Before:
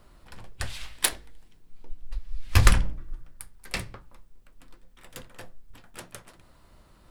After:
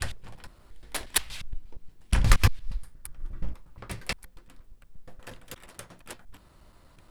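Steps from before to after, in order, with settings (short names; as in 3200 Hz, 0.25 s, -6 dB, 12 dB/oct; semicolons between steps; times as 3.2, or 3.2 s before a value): slices in reverse order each 0.118 s, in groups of 6; soft clip -7 dBFS, distortion -19 dB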